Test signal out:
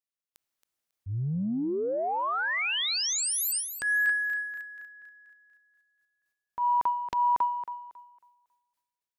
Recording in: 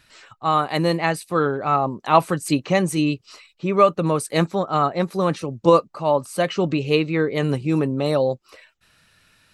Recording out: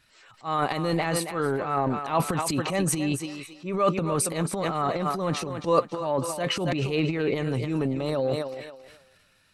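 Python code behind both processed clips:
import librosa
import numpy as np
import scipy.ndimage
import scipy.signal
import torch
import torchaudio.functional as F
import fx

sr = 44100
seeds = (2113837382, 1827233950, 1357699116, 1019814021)

y = fx.echo_thinned(x, sr, ms=274, feedback_pct=26, hz=290.0, wet_db=-10.5)
y = fx.transient(y, sr, attack_db=-7, sustain_db=11)
y = y * librosa.db_to_amplitude(-6.5)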